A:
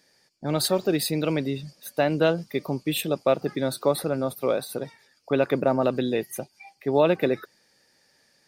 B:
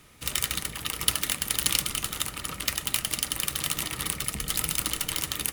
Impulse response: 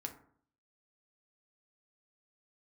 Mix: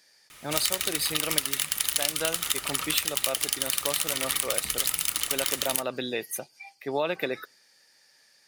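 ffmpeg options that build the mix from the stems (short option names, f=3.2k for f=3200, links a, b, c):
-filter_complex "[0:a]volume=-4dB,asplit=2[a][b];[b]volume=-24dB[c];[1:a]adelay=300,volume=-0.5dB,asplit=2[d][e];[e]volume=-11dB[f];[2:a]atrim=start_sample=2205[g];[c][f]amix=inputs=2:normalize=0[h];[h][g]afir=irnorm=-1:irlink=0[i];[a][d][i]amix=inputs=3:normalize=0,tiltshelf=f=630:g=-7.5,acompressor=threshold=-23dB:ratio=4"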